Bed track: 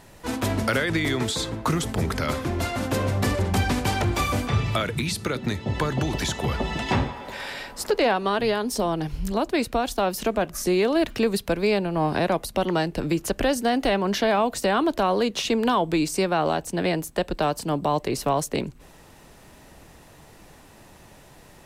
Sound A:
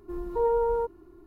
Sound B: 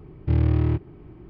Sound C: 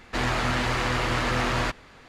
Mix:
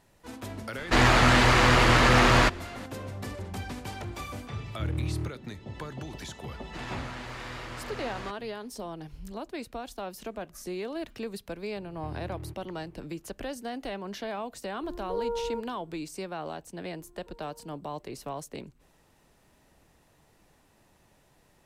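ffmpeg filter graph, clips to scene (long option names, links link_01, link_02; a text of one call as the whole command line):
ffmpeg -i bed.wav -i cue0.wav -i cue1.wav -i cue2.wav -filter_complex "[3:a]asplit=2[link_01][link_02];[2:a]asplit=2[link_03][link_04];[1:a]asplit=2[link_05][link_06];[0:a]volume=-14dB[link_07];[link_01]acontrast=49[link_08];[link_04]acompressor=threshold=-28dB:ratio=6:attack=3.2:release=140:knee=1:detection=peak[link_09];[link_06]acompressor=threshold=-40dB:ratio=6:attack=3.2:release=140:knee=1:detection=peak[link_10];[link_08]atrim=end=2.08,asetpts=PTS-STARTPTS,afade=type=in:duration=0.004:curve=hsin,afade=type=out:start_time=2.076:duration=0.004:curve=hsin,adelay=780[link_11];[link_03]atrim=end=1.29,asetpts=PTS-STARTPTS,volume=-10.5dB,afade=type=in:duration=0.004:curve=hsin,afade=type=out:start_time=1.286:duration=0.004:curve=hsin,adelay=4520[link_12];[link_02]atrim=end=2.08,asetpts=PTS-STARTPTS,volume=-14.5dB,afade=type=in:duration=0.004:curve=hsin,afade=type=out:start_time=2.076:duration=0.004:curve=hsin,adelay=6600[link_13];[link_09]atrim=end=1.29,asetpts=PTS-STARTPTS,volume=-9dB,afade=type=in:duration=0.004:curve=hsin,afade=type=out:start_time=1.286:duration=0.004:curve=hsin,adelay=11760[link_14];[link_05]atrim=end=1.26,asetpts=PTS-STARTPTS,volume=-7dB,afade=type=in:duration=0.004:curve=hsin,afade=type=out:start_time=1.256:duration=0.004:curve=hsin,adelay=14740[link_15];[link_10]atrim=end=1.26,asetpts=PTS-STARTPTS,volume=-14.5dB,afade=type=in:duration=0.004:curve=hsin,afade=type=out:start_time=1.256:duration=0.004:curve=hsin,adelay=16910[link_16];[link_07][link_11][link_12][link_13][link_14][link_15][link_16]amix=inputs=7:normalize=0" out.wav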